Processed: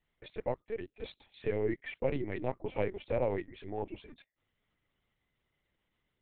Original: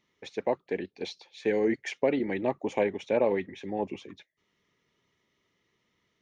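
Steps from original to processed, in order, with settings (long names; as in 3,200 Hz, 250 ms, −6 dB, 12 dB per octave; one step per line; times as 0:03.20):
stylus tracing distortion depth 0.025 ms
linear-prediction vocoder at 8 kHz pitch kept
level −6 dB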